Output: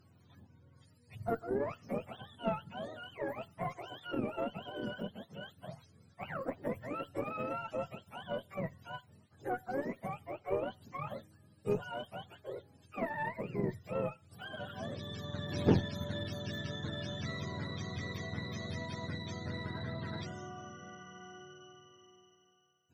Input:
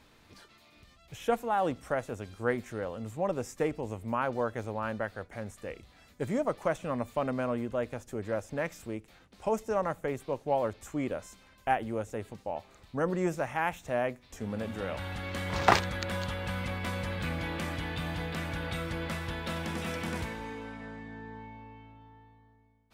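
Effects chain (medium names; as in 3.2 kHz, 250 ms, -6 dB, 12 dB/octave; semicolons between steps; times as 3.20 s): spectrum inverted on a logarithmic axis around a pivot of 570 Hz; Chebyshev shaper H 6 -22 dB, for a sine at -9.5 dBFS; trim -5 dB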